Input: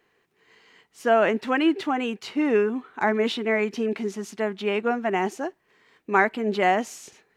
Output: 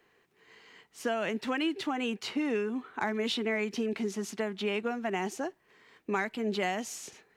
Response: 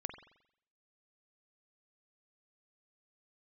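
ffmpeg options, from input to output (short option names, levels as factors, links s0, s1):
-filter_complex "[0:a]acrossover=split=150|3000[s0][s1][s2];[s1]acompressor=threshold=0.0316:ratio=6[s3];[s0][s3][s2]amix=inputs=3:normalize=0"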